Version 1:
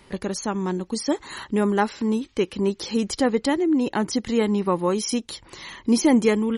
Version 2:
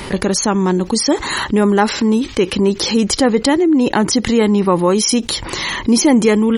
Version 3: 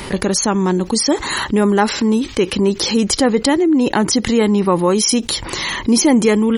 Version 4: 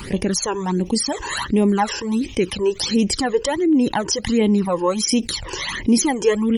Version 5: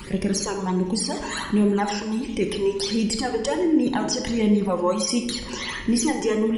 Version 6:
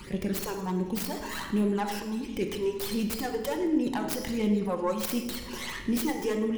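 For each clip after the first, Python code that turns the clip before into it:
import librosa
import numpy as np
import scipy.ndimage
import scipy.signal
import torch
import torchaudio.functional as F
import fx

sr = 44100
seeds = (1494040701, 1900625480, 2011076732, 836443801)

y1 = fx.env_flatten(x, sr, amount_pct=50)
y1 = F.gain(torch.from_numpy(y1), 5.0).numpy()
y2 = fx.high_shelf(y1, sr, hz=7600.0, db=3.5)
y2 = F.gain(torch.from_numpy(y2), -1.0).numpy()
y3 = fx.phaser_stages(y2, sr, stages=12, low_hz=210.0, high_hz=1500.0, hz=1.4, feedback_pct=25)
y3 = F.gain(torch.from_numpy(y3), -2.0).numpy()
y4 = fx.room_shoebox(y3, sr, seeds[0], volume_m3=600.0, walls='mixed', distance_m=0.96)
y4 = F.gain(torch.from_numpy(y4), -5.5).numpy()
y5 = fx.tracing_dist(y4, sr, depth_ms=0.35)
y5 = fx.echo_feedback(y5, sr, ms=108, feedback_pct=49, wet_db=-18)
y5 = F.gain(torch.from_numpy(y5), -6.5).numpy()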